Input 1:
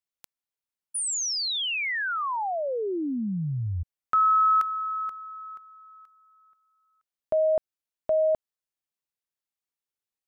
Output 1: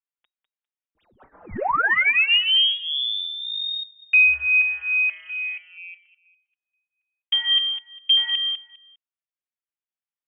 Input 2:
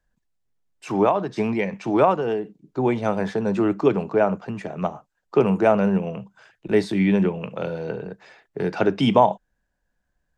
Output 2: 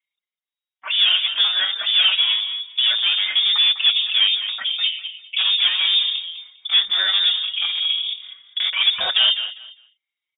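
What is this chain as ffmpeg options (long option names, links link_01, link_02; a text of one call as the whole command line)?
ffmpeg -i in.wav -filter_complex "[0:a]asplit=2[link_01][link_02];[link_02]highpass=frequency=720:poles=1,volume=26dB,asoftclip=type=tanh:threshold=-3dB[link_03];[link_01][link_03]amix=inputs=2:normalize=0,lowpass=frequency=2600:poles=1,volume=-6dB,afwtdn=0.0631,lowpass=frequency=3200:width_type=q:width=0.5098,lowpass=frequency=3200:width_type=q:width=0.6013,lowpass=frequency=3200:width_type=q:width=0.9,lowpass=frequency=3200:width_type=q:width=2.563,afreqshift=-3800,asplit=2[link_04][link_05];[link_05]aecho=0:1:201|402|603:0.316|0.0632|0.0126[link_06];[link_04][link_06]amix=inputs=2:normalize=0,asplit=2[link_07][link_08];[link_08]adelay=4.8,afreqshift=2.4[link_09];[link_07][link_09]amix=inputs=2:normalize=1,volume=-3dB" out.wav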